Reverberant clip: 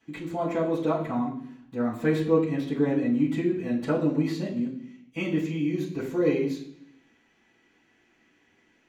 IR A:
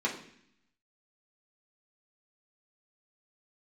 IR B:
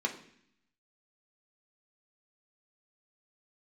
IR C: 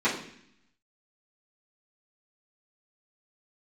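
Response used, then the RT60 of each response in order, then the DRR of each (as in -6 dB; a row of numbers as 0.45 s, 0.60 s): C; 0.65 s, 0.65 s, 0.65 s; -4.5 dB, 0.5 dB, -13.0 dB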